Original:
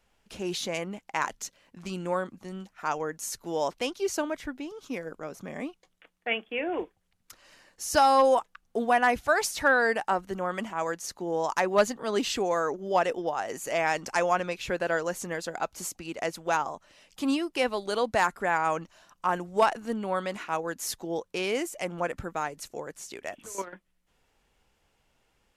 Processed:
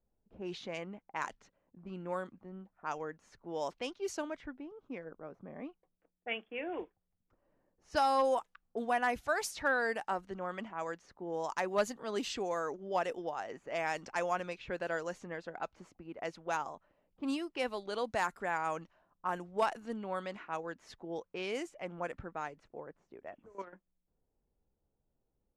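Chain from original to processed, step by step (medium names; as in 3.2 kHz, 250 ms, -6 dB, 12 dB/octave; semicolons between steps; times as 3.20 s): level-controlled noise filter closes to 480 Hz, open at -23.5 dBFS; trim -8.5 dB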